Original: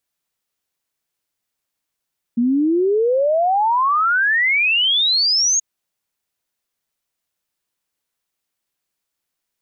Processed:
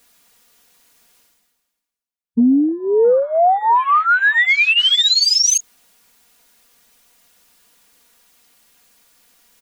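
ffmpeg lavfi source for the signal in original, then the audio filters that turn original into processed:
-f lavfi -i "aevalsrc='0.211*clip(min(t,3.23-t)/0.01,0,1)*sin(2*PI*230*3.23/log(6700/230)*(exp(log(6700/230)*t/3.23)-1))':duration=3.23:sample_rate=44100"
-af "afwtdn=0.0631,aecho=1:1:4.2:0.82,areverse,acompressor=mode=upward:threshold=-26dB:ratio=2.5,areverse"

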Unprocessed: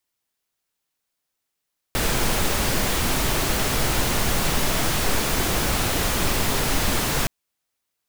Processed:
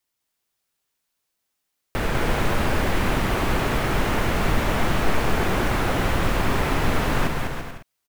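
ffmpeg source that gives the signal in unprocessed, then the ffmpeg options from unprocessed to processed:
-f lavfi -i "anoisesrc=color=pink:amplitude=0.432:duration=5.32:sample_rate=44100:seed=1"
-filter_complex "[0:a]acrossover=split=2700[link_01][link_02];[link_02]acompressor=threshold=-42dB:ratio=4:attack=1:release=60[link_03];[link_01][link_03]amix=inputs=2:normalize=0,asplit=2[link_04][link_05];[link_05]aecho=0:1:200|340|438|506.6|554.6:0.631|0.398|0.251|0.158|0.1[link_06];[link_04][link_06]amix=inputs=2:normalize=0"

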